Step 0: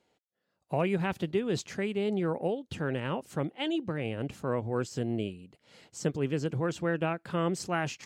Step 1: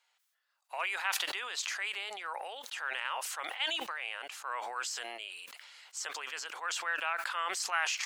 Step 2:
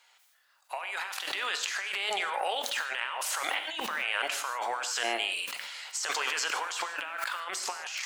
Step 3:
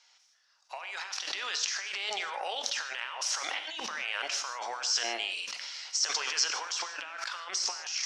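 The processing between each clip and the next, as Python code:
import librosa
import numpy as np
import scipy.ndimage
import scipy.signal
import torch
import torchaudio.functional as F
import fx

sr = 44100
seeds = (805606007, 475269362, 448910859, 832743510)

y1 = scipy.signal.sosfilt(scipy.signal.butter(4, 1000.0, 'highpass', fs=sr, output='sos'), x)
y1 = fx.sustainer(y1, sr, db_per_s=24.0)
y1 = F.gain(torch.from_numpy(y1), 3.0).numpy()
y2 = fx.over_compress(y1, sr, threshold_db=-42.0, ratio=-1.0)
y2 = fx.rev_gated(y2, sr, seeds[0], gate_ms=180, shape='flat', drr_db=8.0)
y2 = F.gain(torch.from_numpy(y2), 7.5).numpy()
y3 = fx.lowpass_res(y2, sr, hz=5600.0, q=6.6)
y3 = F.gain(torch.from_numpy(y3), -5.0).numpy()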